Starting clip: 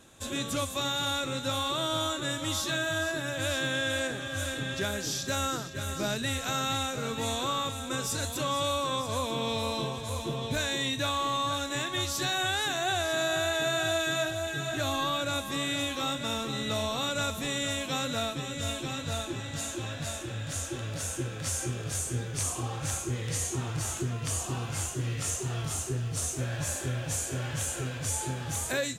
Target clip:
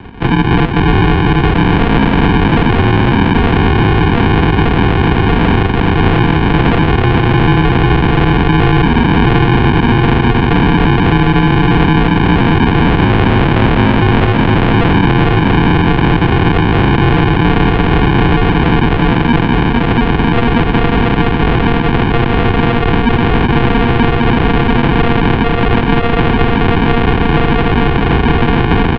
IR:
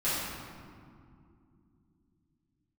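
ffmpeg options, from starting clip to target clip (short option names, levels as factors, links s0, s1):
-af "highpass=54,aecho=1:1:680|1258|1749|2167|2522:0.631|0.398|0.251|0.158|0.1,aresample=16000,acrusher=samples=23:mix=1:aa=0.000001,aresample=44100,highpass=f=150:t=q:w=0.5412,highpass=f=150:t=q:w=1.307,lowpass=f=3300:t=q:w=0.5176,lowpass=f=3300:t=q:w=0.7071,lowpass=f=3300:t=q:w=1.932,afreqshift=-110,alimiter=level_in=28.2:limit=0.891:release=50:level=0:latency=1,volume=0.891"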